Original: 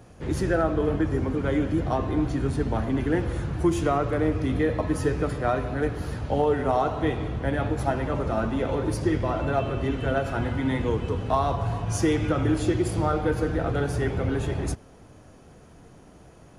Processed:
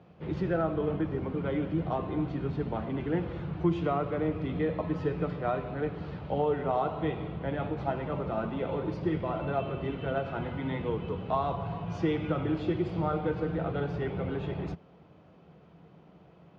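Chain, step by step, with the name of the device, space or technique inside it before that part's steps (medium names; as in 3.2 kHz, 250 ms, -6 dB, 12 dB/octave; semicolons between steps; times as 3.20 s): guitar cabinet (cabinet simulation 100–3600 Hz, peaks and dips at 110 Hz -6 dB, 170 Hz +9 dB, 250 Hz -6 dB, 1.7 kHz -6 dB); trim -5 dB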